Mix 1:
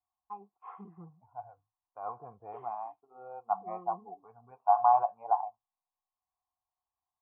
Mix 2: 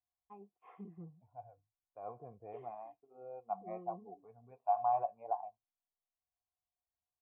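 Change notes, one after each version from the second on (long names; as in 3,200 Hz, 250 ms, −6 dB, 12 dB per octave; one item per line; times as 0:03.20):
master: add flat-topped bell 1,100 Hz −14 dB 1.2 octaves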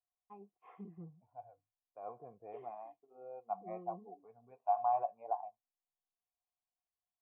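second voice: add parametric band 68 Hz −14.5 dB 1.7 octaves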